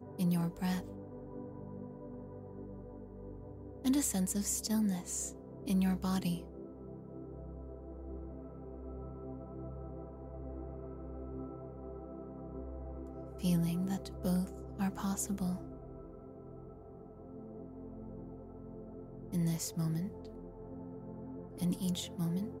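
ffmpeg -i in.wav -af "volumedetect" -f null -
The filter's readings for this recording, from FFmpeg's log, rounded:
mean_volume: -38.5 dB
max_volume: -20.9 dB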